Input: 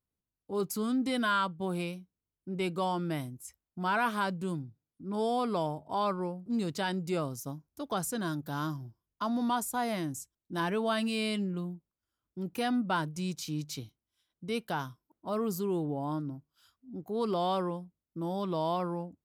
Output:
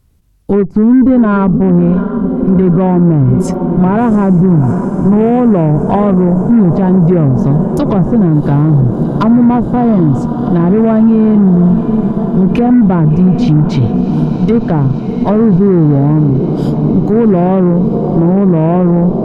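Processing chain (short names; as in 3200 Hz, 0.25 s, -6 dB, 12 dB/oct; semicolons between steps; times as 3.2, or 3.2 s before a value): treble ducked by the level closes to 540 Hz, closed at -30.5 dBFS; low shelf 190 Hz +10 dB; diffused feedback echo 0.72 s, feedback 76%, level -12.5 dB; added harmonics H 8 -28 dB, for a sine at -19 dBFS; low shelf 82 Hz +11 dB; maximiser +27 dB; ending taper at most 270 dB/s; gain -1 dB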